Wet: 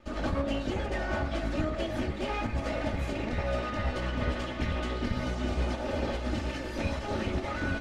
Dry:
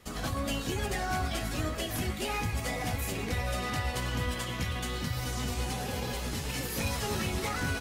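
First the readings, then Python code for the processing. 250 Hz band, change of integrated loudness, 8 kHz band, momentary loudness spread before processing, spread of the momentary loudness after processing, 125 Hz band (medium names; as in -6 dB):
+3.5 dB, +0.5 dB, -13.0 dB, 2 LU, 1 LU, 0.0 dB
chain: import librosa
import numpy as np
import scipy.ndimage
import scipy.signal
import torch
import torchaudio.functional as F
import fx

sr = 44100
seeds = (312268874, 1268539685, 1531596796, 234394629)

p1 = fx.lower_of_two(x, sr, delay_ms=3.3)
p2 = fx.peak_eq(p1, sr, hz=590.0, db=4.5, octaves=0.21)
p3 = fx.volume_shaper(p2, sr, bpm=146, per_beat=1, depth_db=-9, release_ms=92.0, shape='slow start')
p4 = p2 + (p3 * 10.0 ** (-2.5 / 20.0))
p5 = fx.notch(p4, sr, hz=1000.0, q=10.0)
p6 = fx.rider(p5, sr, range_db=10, speed_s=0.5)
p7 = scipy.signal.sosfilt(scipy.signal.butter(2, 5500.0, 'lowpass', fs=sr, output='sos'), p6)
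y = fx.high_shelf(p7, sr, hz=2500.0, db=-12.0)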